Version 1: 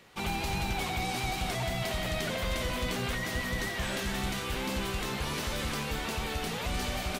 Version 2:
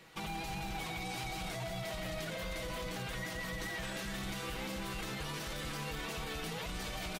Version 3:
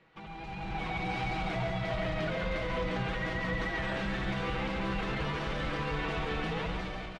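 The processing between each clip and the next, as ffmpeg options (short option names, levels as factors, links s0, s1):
-af "aecho=1:1:6.2:0.59,alimiter=level_in=1.88:limit=0.0631:level=0:latency=1,volume=0.531,volume=0.794"
-af "lowpass=2500,dynaudnorm=f=270:g=5:m=3.98,aecho=1:1:139:0.531,volume=0.562"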